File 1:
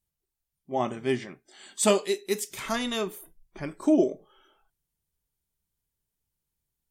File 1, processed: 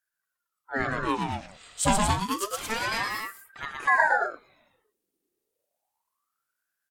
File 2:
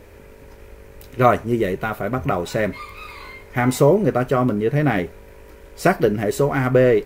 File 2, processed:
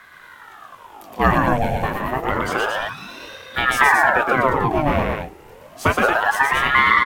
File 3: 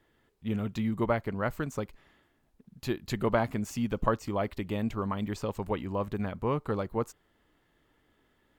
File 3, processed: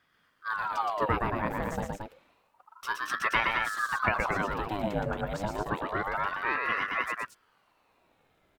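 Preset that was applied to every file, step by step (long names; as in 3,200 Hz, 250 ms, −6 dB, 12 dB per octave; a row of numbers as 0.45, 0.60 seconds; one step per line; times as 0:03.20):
loudspeakers that aren't time-aligned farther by 41 metres −3 dB, 77 metres −5 dB
ring modulator whose carrier an LFO sweeps 960 Hz, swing 65%, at 0.29 Hz
level +1 dB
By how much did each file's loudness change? +0.5, +1.0, +1.5 LU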